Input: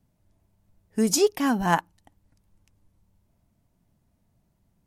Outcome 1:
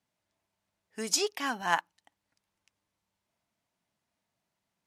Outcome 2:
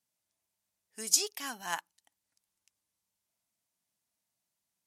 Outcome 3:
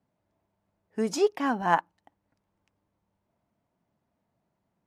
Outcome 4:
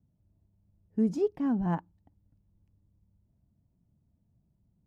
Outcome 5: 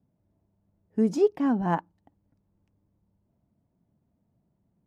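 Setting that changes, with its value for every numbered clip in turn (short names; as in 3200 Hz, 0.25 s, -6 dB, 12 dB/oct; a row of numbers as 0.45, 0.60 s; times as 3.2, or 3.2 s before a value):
band-pass, frequency: 2900, 7900, 890, 100, 280 Hz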